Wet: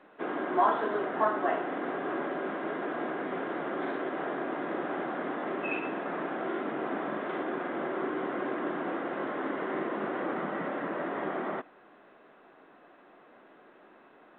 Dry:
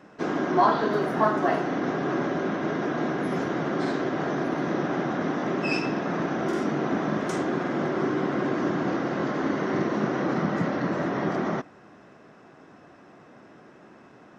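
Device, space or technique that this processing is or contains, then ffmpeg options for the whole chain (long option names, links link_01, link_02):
telephone: -af "highpass=340,lowpass=3200,volume=-4dB" -ar 8000 -c:a pcm_alaw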